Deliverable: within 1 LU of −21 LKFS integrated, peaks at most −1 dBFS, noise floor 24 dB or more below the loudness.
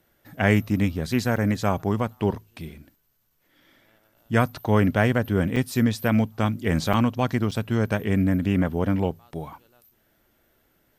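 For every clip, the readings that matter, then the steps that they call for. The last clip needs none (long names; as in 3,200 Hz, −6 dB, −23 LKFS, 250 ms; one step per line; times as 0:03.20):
number of dropouts 4; longest dropout 5.5 ms; integrated loudness −23.5 LKFS; sample peak −6.0 dBFS; target loudness −21.0 LKFS
→ repair the gap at 0:01.36/0:05.56/0:06.93/0:07.51, 5.5 ms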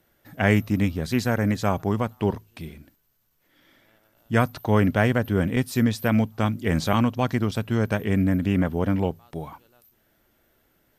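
number of dropouts 0; integrated loudness −23.5 LKFS; sample peak −6.0 dBFS; target loudness −21.0 LKFS
→ level +2.5 dB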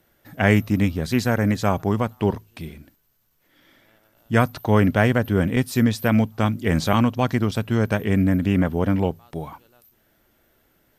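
integrated loudness −21.0 LKFS; sample peak −3.5 dBFS; background noise floor −64 dBFS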